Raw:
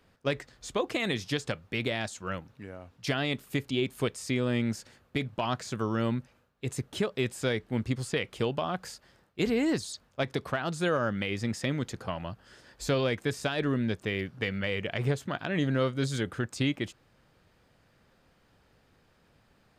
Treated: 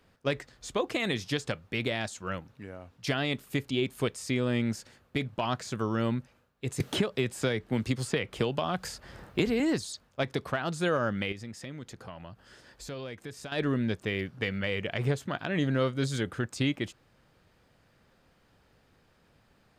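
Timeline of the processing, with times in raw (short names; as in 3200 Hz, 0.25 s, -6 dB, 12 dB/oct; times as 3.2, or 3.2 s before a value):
6.8–9.6 three-band squash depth 100%
11.32–13.52 compressor 2:1, threshold -46 dBFS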